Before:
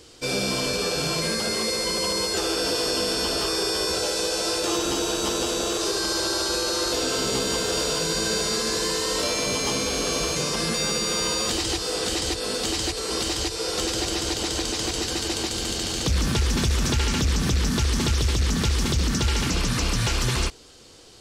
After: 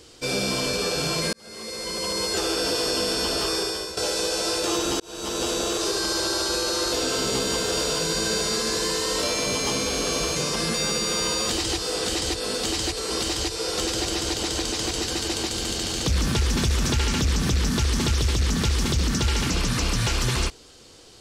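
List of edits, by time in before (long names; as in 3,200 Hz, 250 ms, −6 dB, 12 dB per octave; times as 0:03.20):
0:01.33–0:02.33: fade in
0:03.55–0:03.97: fade out linear, to −12.5 dB
0:05.00–0:05.46: fade in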